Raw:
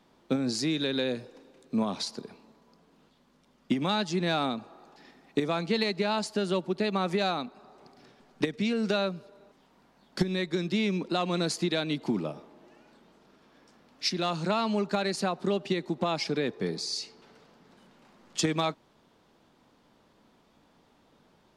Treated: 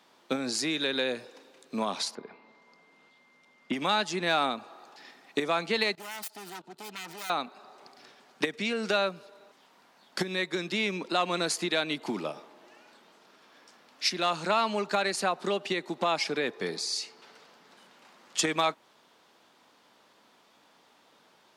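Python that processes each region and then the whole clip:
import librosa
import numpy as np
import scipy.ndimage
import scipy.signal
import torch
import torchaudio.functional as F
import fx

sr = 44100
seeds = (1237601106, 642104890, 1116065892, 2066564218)

y = fx.env_lowpass_down(x, sr, base_hz=2600.0, full_db=-42.0, at=(2.14, 3.72), fade=0.02)
y = fx.high_shelf(y, sr, hz=3800.0, db=-7.5, at=(2.14, 3.72), fade=0.02)
y = fx.dmg_tone(y, sr, hz=2100.0, level_db=-68.0, at=(2.14, 3.72), fade=0.02)
y = fx.chain(y, sr, fx.self_delay(depth_ms=0.63),
    fx.level_steps(step_db=21),
    fx.notch_comb(f0_hz=560.0), at=(5.95, 7.3))
y = fx.highpass(y, sr, hz=1000.0, slope=6)
y = fx.dynamic_eq(y, sr, hz=4700.0, q=1.1, threshold_db=-48.0, ratio=4.0, max_db=-6)
y = y * librosa.db_to_amplitude(7.0)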